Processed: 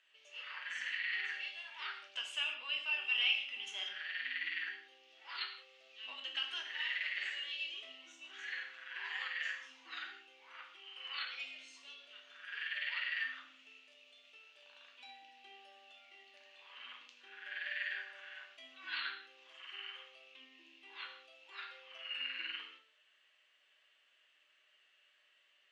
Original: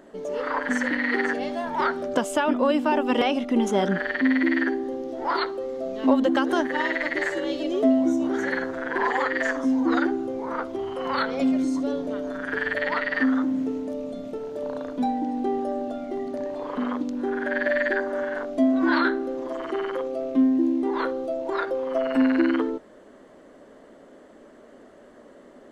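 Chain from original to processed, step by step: ladder band-pass 2.9 kHz, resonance 75%; gated-style reverb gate 210 ms falling, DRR 0.5 dB

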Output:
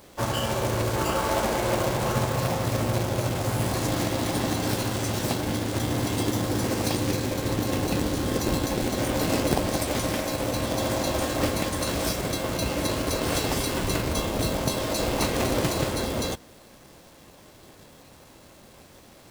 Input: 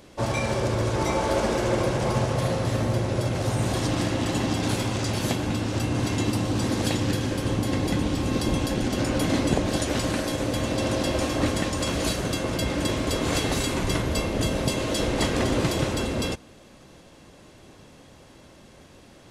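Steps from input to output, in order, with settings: companded quantiser 4-bit; formant shift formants +4 st; trim -1.5 dB

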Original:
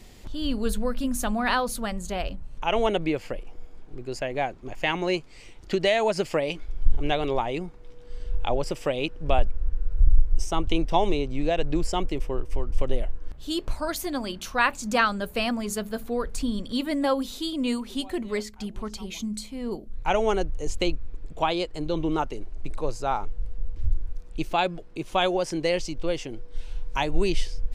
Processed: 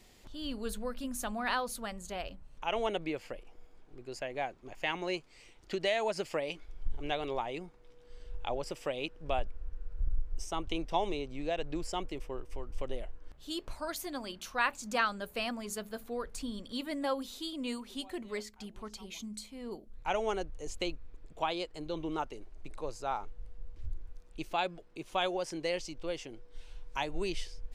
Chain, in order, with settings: bass shelf 270 Hz -7.5 dB; trim -7.5 dB

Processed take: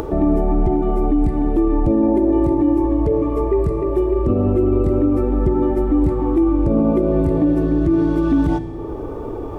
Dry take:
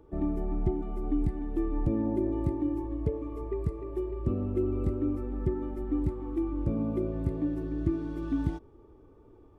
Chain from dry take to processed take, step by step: peaking EQ 660 Hz +7 dB 1.5 oct; upward compressor, threshold -30 dBFS; on a send at -11 dB: reverberation RT60 1.6 s, pre-delay 8 ms; on the sum: loudness maximiser +22 dB; trim -7.5 dB

